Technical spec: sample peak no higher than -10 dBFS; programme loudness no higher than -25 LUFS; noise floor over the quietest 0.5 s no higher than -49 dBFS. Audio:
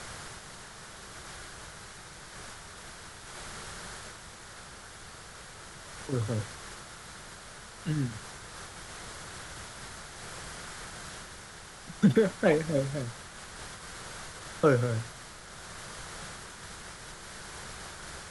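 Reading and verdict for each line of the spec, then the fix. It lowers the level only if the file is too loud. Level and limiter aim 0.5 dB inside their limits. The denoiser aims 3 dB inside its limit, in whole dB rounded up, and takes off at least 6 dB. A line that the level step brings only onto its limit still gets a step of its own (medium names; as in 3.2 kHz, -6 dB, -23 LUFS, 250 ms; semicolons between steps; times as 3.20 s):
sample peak -11.5 dBFS: pass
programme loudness -35.0 LUFS: pass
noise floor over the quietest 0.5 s -47 dBFS: fail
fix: noise reduction 6 dB, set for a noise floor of -47 dBFS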